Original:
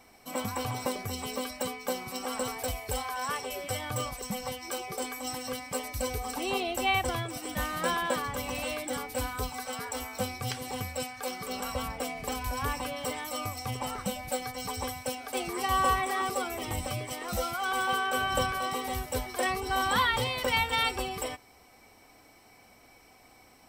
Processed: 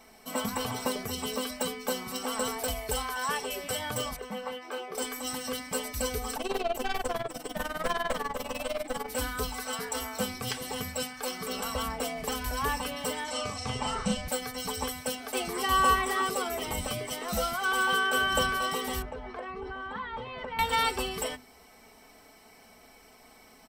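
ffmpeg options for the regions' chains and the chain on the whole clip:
-filter_complex "[0:a]asettb=1/sr,asplit=3[a][b][c];[a]atrim=end=4.164[d];[b]atrim=start=4.16:end=4.95,asetpts=PTS-STARTPTS,afade=t=in:d=0.004:c=qsin,afade=t=out:st=0.786:d=0.004:c=qsin,acrossover=split=260 2800:gain=0.1 1 0.126[e][f][g];[e][f][g]amix=inputs=3:normalize=0,asplit=2[h][i];[i]adelay=24,volume=-9dB[j];[h][j]amix=inputs=2:normalize=0,atrim=end_sample=34839[k];[c]atrim=start=4.946[l];[d][k]acrossfade=d=0.004:c1=hsin:c2=qsin[m];[m][l]acrossfade=d=0.004:c1=qsin:c2=hsin,asettb=1/sr,asplit=3[n][o][p];[n]atrim=end=6.364[q];[o]atrim=start=6.36:end=9.08,asetpts=PTS-STARTPTS,afade=t=in:d=0.004:c=qsin,afade=t=out:st=2.716:d=0.004:c=qsin,equalizer=f=630:t=o:w=1.7:g=8,tremolo=f=20:d=0.889,aeval=exprs='(tanh(17.8*val(0)+0.55)-tanh(0.55))/17.8':c=same[r];[p]atrim=start=9.076[s];[q][r]acrossfade=d=0.004:c1=hsin:c2=qsin[t];[t][s]acrossfade=d=0.004:c1=qsin:c2=hsin,asettb=1/sr,asplit=3[u][v][w];[u]atrim=end=13.244[x];[v]atrim=start=13.24:end=14.28,asetpts=PTS-STARTPTS,afade=t=in:d=0.004:c=qsin,afade=t=out:st=1.036:d=0.004:c=qsin,lowpass=f=8k:w=0.5412,lowpass=f=8k:w=1.3066,asubboost=boost=5.5:cutoff=180,asplit=2[y][z];[z]adelay=38,volume=-3dB[aa];[y][aa]amix=inputs=2:normalize=0,atrim=end_sample=45864[ab];[w]atrim=start=14.276[ac];[x][ab]acrossfade=d=0.004:c1=hsin:c2=qsin[ad];[ad][ac]acrossfade=d=0.004:c1=qsin:c2=hsin,asettb=1/sr,asplit=3[ae][af][ag];[ae]atrim=end=19.024[ah];[af]atrim=start=19.02:end=20.59,asetpts=PTS-STARTPTS,afade=t=in:d=0.004:c=qsin,afade=t=out:st=1.566:d=0.004:c=qsin,lowpass=1.8k,acompressor=threshold=-36dB:ratio=6:attack=3.2:release=140:knee=1:detection=peak[ai];[ag]atrim=start=20.586[aj];[ah][ai]acrossfade=d=0.004:c1=hsin:c2=qsin[ak];[ak][aj]acrossfade=d=0.004:c1=qsin:c2=hsin,bandreject=f=50:t=h:w=6,bandreject=f=100:t=h:w=6,bandreject=f=150:t=h:w=6,bandreject=f=200:t=h:w=6,bandreject=f=250:t=h:w=6,aecho=1:1:4.6:0.56,volume=1.5dB"

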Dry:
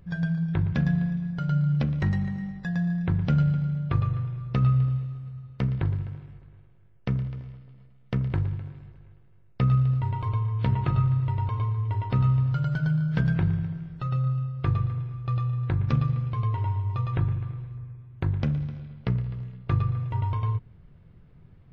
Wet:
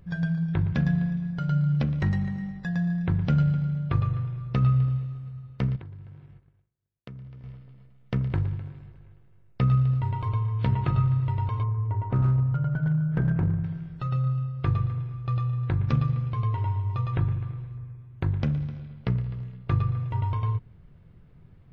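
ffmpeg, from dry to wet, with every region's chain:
-filter_complex "[0:a]asettb=1/sr,asplit=3[a][b][c];[a]atrim=end=5.764[d];[b]atrim=start=5.76:end=7.44,asetpts=PTS-STARTPTS,afade=t=in:d=0.004:c=qsin,afade=t=out:st=1.676:d=0.004:c=qsin,agate=range=-33dB:threshold=-41dB:ratio=3:release=100:detection=peak,highpass=53,acompressor=threshold=-44dB:ratio=3:attack=3.2:release=140:knee=1:detection=peak[e];[c]atrim=start=7.436[f];[d][e]acrossfade=d=0.004:c1=hsin:c2=qsin[g];[g][f]acrossfade=d=0.004:c1=qsin:c2=hsin,asettb=1/sr,asplit=3[h][i][j];[h]atrim=end=11.634[k];[i]atrim=start=11.63:end=13.64,asetpts=PTS-STARTPTS,afade=t=in:d=0.004:c=qsin,afade=t=out:st=2.006:d=0.004:c=qsin,lowpass=1.4k,aeval=exprs='clip(val(0),-1,0.112)':c=same[l];[j]atrim=start=13.636[m];[k][l]acrossfade=d=0.004:c1=hsin:c2=qsin[n];[n][m]acrossfade=d=0.004:c1=qsin:c2=hsin"

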